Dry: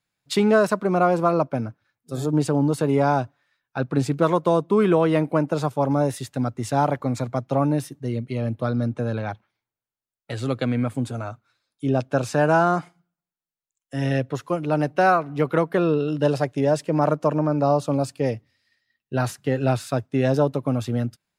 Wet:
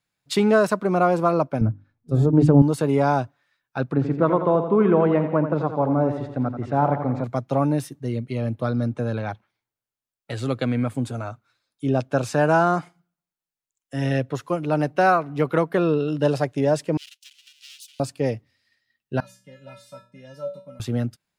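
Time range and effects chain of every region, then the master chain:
1.61–2.62 tilt -4 dB/oct + notches 50/100/150/200/250/300/350 Hz
3.93–7.24 LPF 1700 Hz + feedback echo 85 ms, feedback 54%, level -9 dB
16.97–18 minimum comb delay 2 ms + elliptic high-pass 2900 Hz, stop band 80 dB
19.2–20.8 resonator 190 Hz, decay 0.31 s, harmonics odd, mix 100% + de-hum 120.6 Hz, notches 10
whole clip: dry

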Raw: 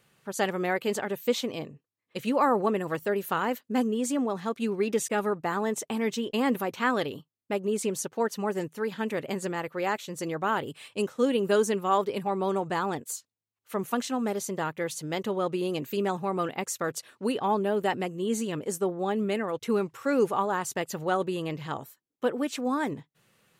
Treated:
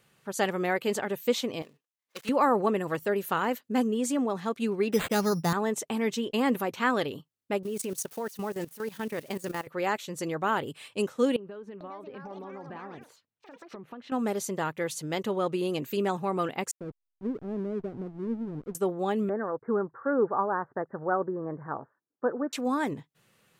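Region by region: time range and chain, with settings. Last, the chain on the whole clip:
1.62–2.29 switching dead time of 0.16 ms + HPF 1000 Hz 6 dB/oct
4.92–5.53 bell 170 Hz +13.5 dB 0.43 oct + careless resampling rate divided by 8×, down none, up hold
7.63–9.67 switching spikes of -33.5 dBFS + notch 7400 Hz, Q 17 + level quantiser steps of 16 dB
11.36–14.12 air absorption 380 m + compressor 8:1, threshold -39 dBFS + echoes that change speed 0.447 s, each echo +6 st, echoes 2, each echo -6 dB
16.71–18.75 Gaussian blur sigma 19 samples + backlash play -38 dBFS
19.29–22.53 steep low-pass 1700 Hz 72 dB/oct + low shelf 140 Hz -10.5 dB
whole clip: dry

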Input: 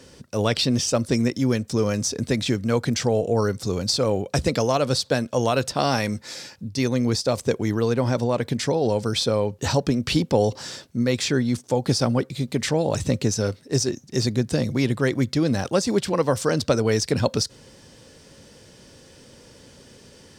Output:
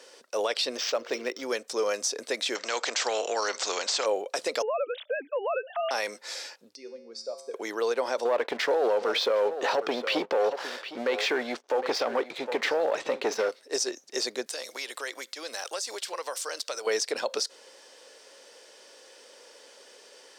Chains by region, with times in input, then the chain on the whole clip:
0.77–1.43 de-hum 95.8 Hz, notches 5 + decimation joined by straight lines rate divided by 4×
2.55–4.06 steep low-pass 7600 Hz 72 dB/oct + spectral compressor 2:1
4.62–5.91 sine-wave speech + compressor 3:1, threshold -27 dBFS
6.75–7.54 spectral contrast raised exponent 1.6 + resonator 76 Hz, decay 1 s, harmonics odd, mix 80%
8.25–13.49 LPF 2600 Hz + sample leveller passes 2 + echo 0.759 s -15.5 dB
14.46–16.87 HPF 300 Hz 6 dB/oct + tilt +3 dB/oct + compressor 3:1, threshold -31 dBFS
whole clip: HPF 450 Hz 24 dB/oct; high shelf 9200 Hz -5 dB; limiter -17.5 dBFS

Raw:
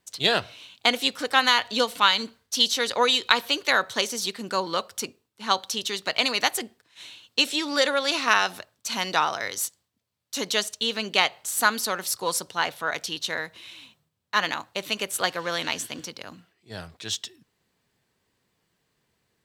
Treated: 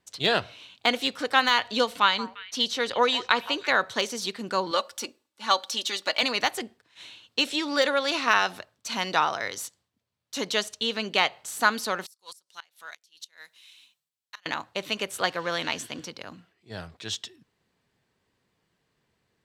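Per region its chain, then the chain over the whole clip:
2.02–3.79 high shelf 4100 Hz -6 dB + delay with a stepping band-pass 0.167 s, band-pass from 840 Hz, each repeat 1.4 oct, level -12 dB
4.71–6.23 HPF 41 Hz + tone controls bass -12 dB, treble +4 dB + comb 3.5 ms, depth 58%
12.06–14.46 pre-emphasis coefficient 0.97 + flipped gate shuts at -24 dBFS, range -24 dB
whole clip: high shelf 12000 Hz -7.5 dB; de-esser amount 45%; high shelf 4800 Hz -5 dB

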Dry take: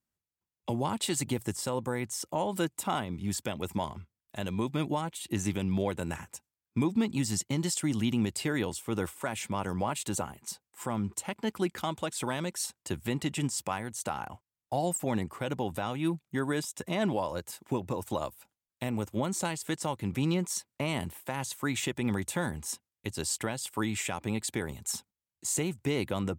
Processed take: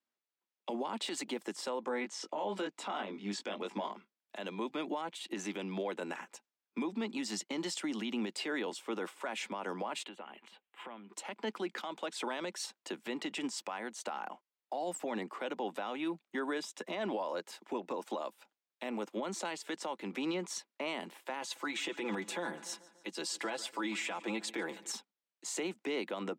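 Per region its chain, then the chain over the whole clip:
1.85–3.92 LPF 7000 Hz + doubler 20 ms -4.5 dB
10.04–11.1 compressor, threshold -41 dBFS + resonant high shelf 4100 Hz -10.5 dB, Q 3
21.41–24.92 comb 6 ms, depth 66% + feedback echo 0.145 s, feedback 54%, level -21.5 dB
whole clip: steep high-pass 190 Hz 48 dB/oct; three-band isolator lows -12 dB, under 290 Hz, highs -18 dB, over 5600 Hz; limiter -29 dBFS; gain +1 dB

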